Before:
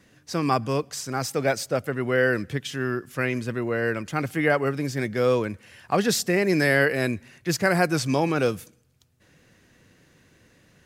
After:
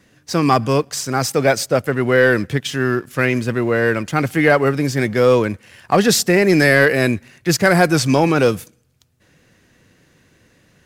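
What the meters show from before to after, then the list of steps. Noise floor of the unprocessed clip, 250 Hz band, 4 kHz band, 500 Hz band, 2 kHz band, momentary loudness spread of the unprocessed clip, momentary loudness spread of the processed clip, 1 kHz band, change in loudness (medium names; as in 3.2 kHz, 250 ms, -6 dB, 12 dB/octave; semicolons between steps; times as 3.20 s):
-60 dBFS, +8.5 dB, +8.5 dB, +8.5 dB, +8.0 dB, 8 LU, 7 LU, +8.0 dB, +8.0 dB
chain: waveshaping leveller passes 1; trim +5 dB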